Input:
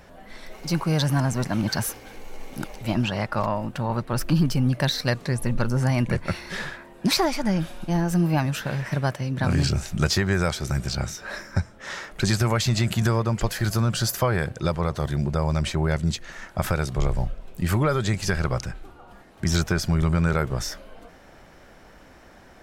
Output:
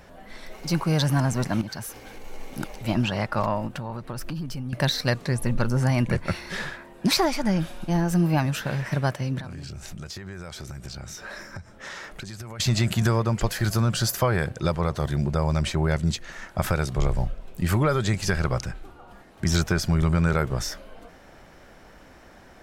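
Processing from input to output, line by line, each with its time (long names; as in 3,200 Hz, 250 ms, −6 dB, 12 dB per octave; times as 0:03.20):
0:01.61–0:02.24: downward compressor 2.5 to 1, threshold −35 dBFS
0:03.67–0:04.73: downward compressor 10 to 1, threshold −28 dBFS
0:09.40–0:12.60: downward compressor 16 to 1, threshold −33 dBFS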